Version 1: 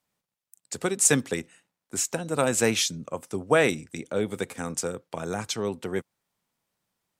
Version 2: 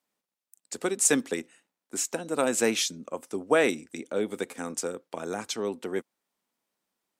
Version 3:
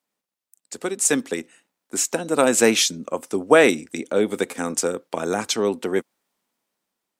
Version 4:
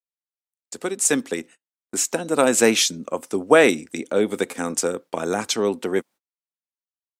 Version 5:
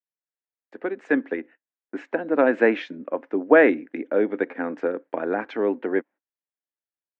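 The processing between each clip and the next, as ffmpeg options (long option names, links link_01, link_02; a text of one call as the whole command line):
ffmpeg -i in.wav -af "lowshelf=frequency=180:width_type=q:width=1.5:gain=-10.5,volume=-2.5dB" out.wav
ffmpeg -i in.wav -af "dynaudnorm=framelen=460:gausssize=7:maxgain=10dB,volume=1dB" out.wav
ffmpeg -i in.wav -af "agate=range=-35dB:threshold=-43dB:ratio=16:detection=peak" out.wav
ffmpeg -i in.wav -af "highpass=280,equalizer=frequency=290:width_type=q:width=4:gain=8,equalizer=frequency=580:width_type=q:width=4:gain=3,equalizer=frequency=1200:width_type=q:width=4:gain=-5,equalizer=frequency=1700:width_type=q:width=4:gain=6,lowpass=frequency=2100:width=0.5412,lowpass=frequency=2100:width=1.3066,volume=-2dB" out.wav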